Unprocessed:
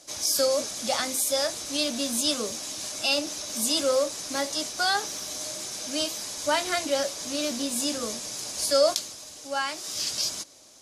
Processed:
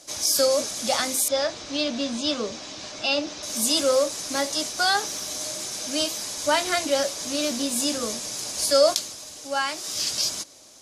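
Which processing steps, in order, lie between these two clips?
1.28–3.43 Bessel low-pass 4000 Hz, order 4; gain +3 dB

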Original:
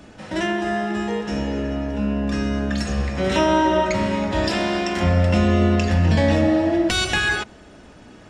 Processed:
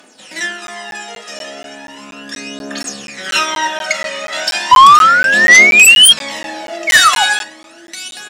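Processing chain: 3.26–4.44 bell 1700 Hz +6 dB 1.1 oct; echo 1.035 s -11.5 dB; 6.87–7.24 painted sound fall 760–2300 Hz -15 dBFS; reverb RT60 0.55 s, pre-delay 4 ms, DRR 9 dB; 4.71–6.13 painted sound rise 980–3300 Hz -11 dBFS; Bessel high-pass 230 Hz, order 4; tilt +4.5 dB/oct; phaser 0.36 Hz, delay 1.7 ms, feedback 63%; sine folder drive 7 dB, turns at 6 dBFS; crackling interface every 0.24 s, samples 512, zero, from 0.67; upward expander 1.5:1, over -9 dBFS; gain -7 dB

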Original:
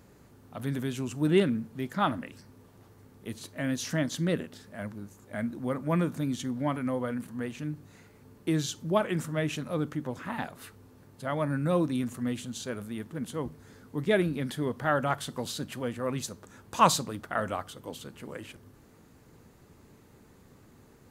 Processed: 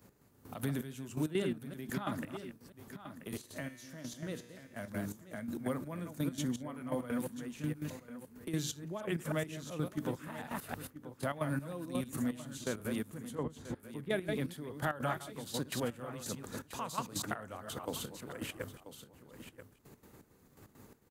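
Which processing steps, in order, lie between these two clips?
reverse delay 0.158 s, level -6.5 dB; high shelf 10000 Hz +11.5 dB; expander -41 dBFS; compressor 2.5:1, threshold -48 dBFS, peak gain reduction 21.5 dB; step gate "x....x.x" 167 bpm -12 dB; 3.37–4.88 resonator 120 Hz, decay 1.2 s, harmonics all, mix 70%; 13.35–14.1 air absorption 420 m; on a send: echo 0.984 s -16.5 dB; on the sum: three-band squash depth 40%; gain +10 dB

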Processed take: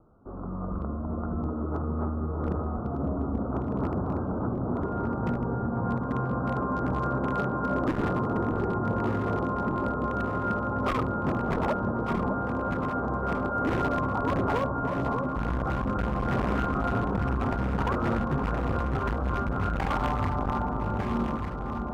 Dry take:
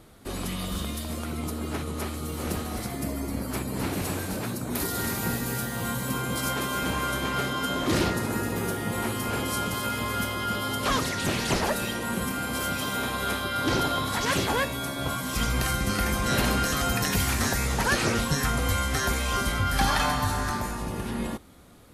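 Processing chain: steep low-pass 1400 Hz 96 dB/oct; AGC gain up to 8.5 dB; wavefolder -13 dBFS; echo with dull and thin repeats by turns 0.601 s, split 940 Hz, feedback 74%, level -5 dB; core saturation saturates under 210 Hz; gain -7 dB

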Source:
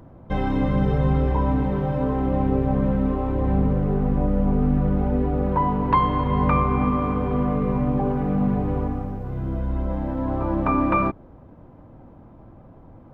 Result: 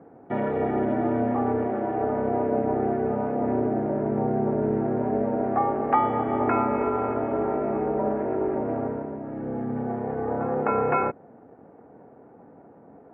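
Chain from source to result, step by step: ring modulator 180 Hz; speaker cabinet 230–2100 Hz, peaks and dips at 340 Hz -5 dB, 730 Hz +3 dB, 1100 Hz -9 dB; gain +3.5 dB

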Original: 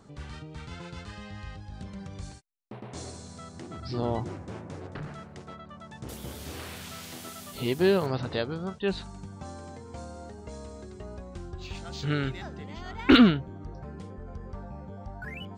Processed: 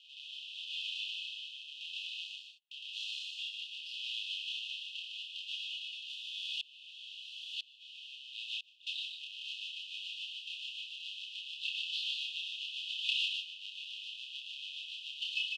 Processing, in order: half-waves squared off; compressor 8:1, threshold -30 dBFS, peak gain reduction 19 dB; synth low-pass 3200 Hz, resonance Q 4.2; rotary speaker horn 0.85 Hz, later 7 Hz, at 8.08; brick-wall FIR high-pass 2500 Hz; doubler 29 ms -2.5 dB; loudspeakers at several distances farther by 21 m -10 dB, 52 m -4 dB; 6.61–8.87 dB-ramp tremolo swelling 1 Hz, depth 26 dB; gain +1 dB

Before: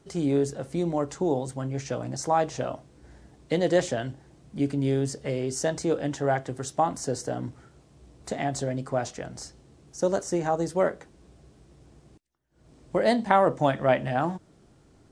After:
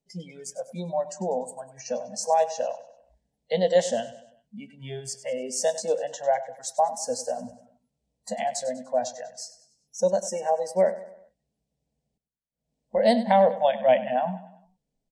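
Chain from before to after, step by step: spectral noise reduction 26 dB; fixed phaser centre 340 Hz, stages 6; feedback echo 98 ms, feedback 46%, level -15 dB; gain +4 dB

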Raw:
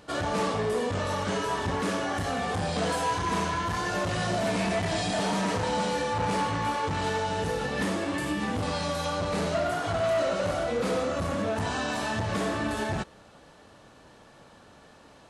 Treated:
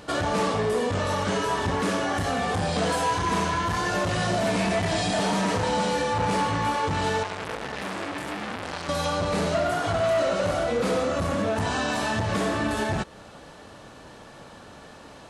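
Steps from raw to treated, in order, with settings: in parallel at +3 dB: compressor, threshold -36 dBFS, peak gain reduction 12 dB; 7.23–8.89 on the sum: core saturation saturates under 2200 Hz

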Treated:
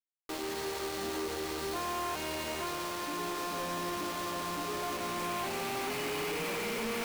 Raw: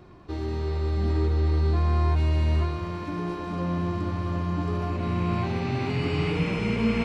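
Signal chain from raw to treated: delta modulation 32 kbps, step -42 dBFS; HPF 440 Hz 12 dB/oct; companded quantiser 2-bit; gain -8 dB

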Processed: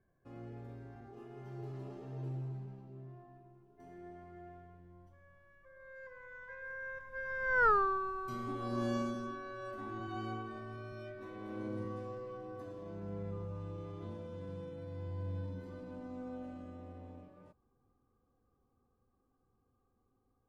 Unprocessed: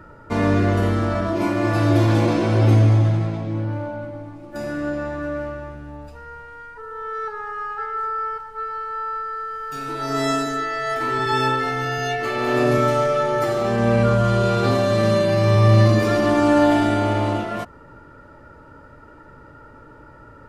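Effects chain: Doppler pass-by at 7.68, 57 m/s, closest 5.9 m; tilt shelf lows +6 dB, about 830 Hz; gain +4 dB

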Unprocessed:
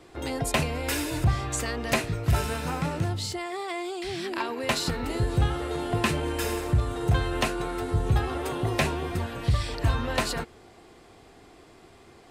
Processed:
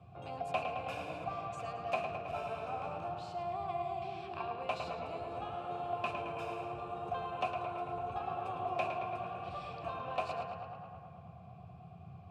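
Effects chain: vowel filter a; band noise 77–180 Hz -54 dBFS; on a send: tape echo 0.109 s, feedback 80%, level -5 dB, low-pass 3700 Hz

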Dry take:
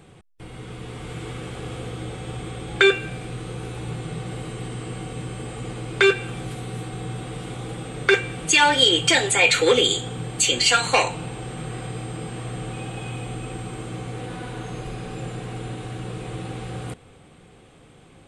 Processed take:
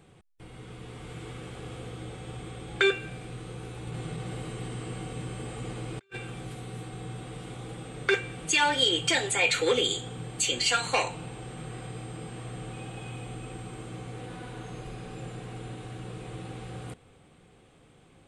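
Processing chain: 3.87–6.17 negative-ratio compressor -30 dBFS, ratio -0.5; gain -7.5 dB

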